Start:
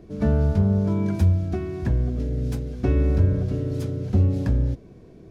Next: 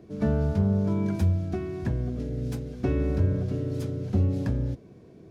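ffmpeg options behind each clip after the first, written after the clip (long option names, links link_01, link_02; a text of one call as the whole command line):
ffmpeg -i in.wav -af "highpass=85,volume=-2.5dB" out.wav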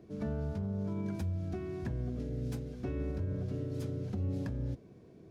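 ffmpeg -i in.wav -af "alimiter=limit=-22dB:level=0:latency=1:release=182,volume=-5.5dB" out.wav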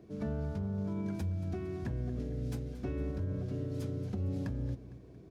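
ffmpeg -i in.wav -af "aecho=1:1:228|456|684|912|1140:0.168|0.0839|0.042|0.021|0.0105" out.wav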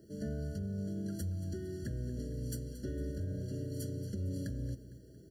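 ffmpeg -i in.wav -af "aexciter=amount=4.7:drive=5.4:freq=3900,afftfilt=real='re*eq(mod(floor(b*sr/1024/680),2),0)':imag='im*eq(mod(floor(b*sr/1024/680),2),0)':win_size=1024:overlap=0.75,volume=-2.5dB" out.wav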